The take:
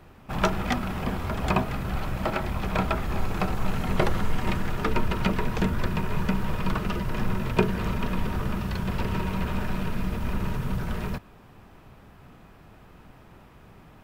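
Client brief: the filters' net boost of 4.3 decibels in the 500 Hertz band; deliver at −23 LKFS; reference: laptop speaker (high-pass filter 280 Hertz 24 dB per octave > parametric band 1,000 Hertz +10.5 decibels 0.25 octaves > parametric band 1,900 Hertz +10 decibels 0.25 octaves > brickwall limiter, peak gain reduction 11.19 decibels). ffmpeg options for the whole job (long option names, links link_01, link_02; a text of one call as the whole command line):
ffmpeg -i in.wav -af "highpass=frequency=280:width=0.5412,highpass=frequency=280:width=1.3066,equalizer=frequency=500:width_type=o:gain=5.5,equalizer=frequency=1000:width_type=o:width=0.25:gain=10.5,equalizer=frequency=1900:width_type=o:width=0.25:gain=10,volume=6.5dB,alimiter=limit=-10dB:level=0:latency=1" out.wav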